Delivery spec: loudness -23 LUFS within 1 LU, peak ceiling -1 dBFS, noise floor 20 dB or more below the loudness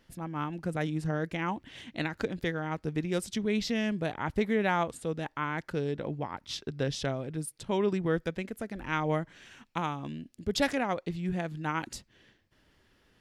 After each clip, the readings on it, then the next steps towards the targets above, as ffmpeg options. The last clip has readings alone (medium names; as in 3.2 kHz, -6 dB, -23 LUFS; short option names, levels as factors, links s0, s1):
loudness -32.5 LUFS; peak level -11.5 dBFS; loudness target -23.0 LUFS
-> -af "volume=2.99"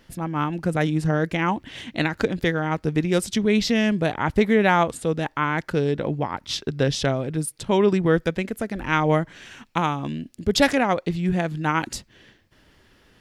loudness -23.0 LUFS; peak level -2.0 dBFS; noise floor -58 dBFS